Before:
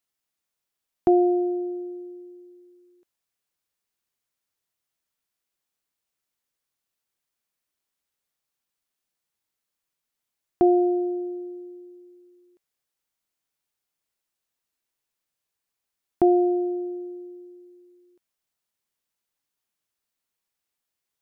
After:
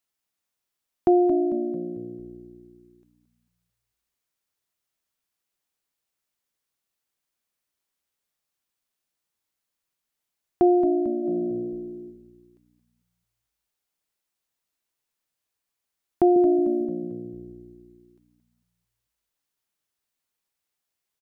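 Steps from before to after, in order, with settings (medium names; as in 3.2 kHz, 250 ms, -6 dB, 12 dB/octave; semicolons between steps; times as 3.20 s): 16.36–16.85 s: tone controls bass +12 dB, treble +8 dB; frequency-shifting echo 223 ms, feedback 47%, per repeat -60 Hz, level -11 dB; 11.18–12.04 s: reverb throw, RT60 0.83 s, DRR 1.5 dB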